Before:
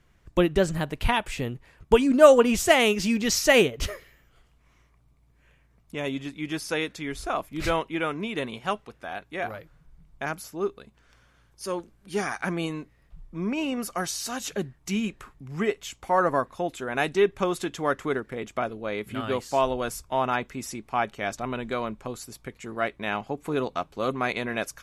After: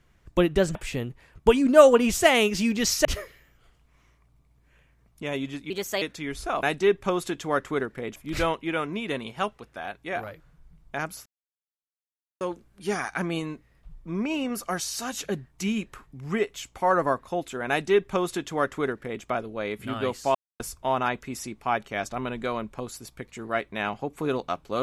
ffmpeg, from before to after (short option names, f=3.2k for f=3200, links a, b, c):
-filter_complex "[0:a]asplit=11[a][b][c][d][e][f][g][h][i][j][k];[a]atrim=end=0.752[l];[b]atrim=start=1.198:end=3.502[m];[c]atrim=start=3.768:end=6.424[n];[d]atrim=start=6.42:end=6.82,asetpts=PTS-STARTPTS,asetrate=55566,aresample=44100[o];[e]atrim=start=6.816:end=7.432[p];[f]atrim=start=16.968:end=18.502[q];[g]atrim=start=7.428:end=10.53,asetpts=PTS-STARTPTS,afade=t=out:st=3.098:d=0.004:c=hsin[r];[h]atrim=start=10.53:end=11.68,asetpts=PTS-STARTPTS,volume=0[s];[i]atrim=start=11.68:end=19.62,asetpts=PTS-STARTPTS,afade=t=in:d=0.004:c=hsin,afade=t=out:st=7.936:d=0.004:c=hsin[t];[j]atrim=start=19.62:end=19.87,asetpts=PTS-STARTPTS,volume=0[u];[k]atrim=start=19.87,asetpts=PTS-STARTPTS,afade=t=in:d=0.004:c=hsin[v];[l][m]acrossfade=d=0.004:c1=hsin:c2=hsin[w];[w][n]acrossfade=d=0.004:c1=hsin:c2=hsin[x];[x][o]acrossfade=d=0.004:c1=hsin:c2=hsin[y];[y][p]acrossfade=d=0.004:c1=hsin:c2=hsin[z];[z][q]acrossfade=d=0.004:c1=hsin:c2=hsin[aa];[r][s][t][u][v]concat=n=5:v=0:a=1[ab];[aa][ab]acrossfade=d=0.004:c1=hsin:c2=hsin"